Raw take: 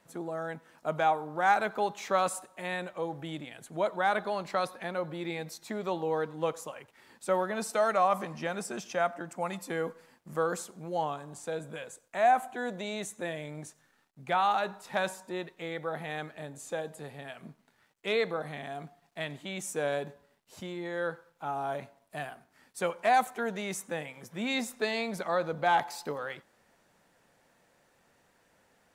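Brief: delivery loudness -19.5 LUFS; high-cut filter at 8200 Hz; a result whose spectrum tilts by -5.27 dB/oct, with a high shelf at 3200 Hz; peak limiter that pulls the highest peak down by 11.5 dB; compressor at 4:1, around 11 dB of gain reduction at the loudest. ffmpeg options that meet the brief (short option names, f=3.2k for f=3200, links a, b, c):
-af "lowpass=8.2k,highshelf=f=3.2k:g=-8,acompressor=threshold=-34dB:ratio=4,volume=23.5dB,alimiter=limit=-8.5dB:level=0:latency=1"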